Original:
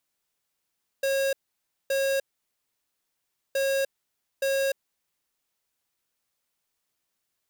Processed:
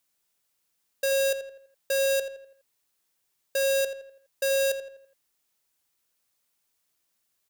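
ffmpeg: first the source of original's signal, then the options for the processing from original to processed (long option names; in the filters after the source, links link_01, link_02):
-f lavfi -i "aevalsrc='0.0562*(2*lt(mod(544*t,1),0.5)-1)*clip(min(mod(mod(t,2.52),0.87),0.3-mod(mod(t,2.52),0.87))/0.005,0,1)*lt(mod(t,2.52),1.74)':duration=5.04:sample_rate=44100"
-filter_complex "[0:a]highshelf=frequency=4600:gain=5.5,asplit=2[link_01][link_02];[link_02]adelay=83,lowpass=frequency=3200:poles=1,volume=-9dB,asplit=2[link_03][link_04];[link_04]adelay=83,lowpass=frequency=3200:poles=1,volume=0.44,asplit=2[link_05][link_06];[link_06]adelay=83,lowpass=frequency=3200:poles=1,volume=0.44,asplit=2[link_07][link_08];[link_08]adelay=83,lowpass=frequency=3200:poles=1,volume=0.44,asplit=2[link_09][link_10];[link_10]adelay=83,lowpass=frequency=3200:poles=1,volume=0.44[link_11];[link_01][link_03][link_05][link_07][link_09][link_11]amix=inputs=6:normalize=0"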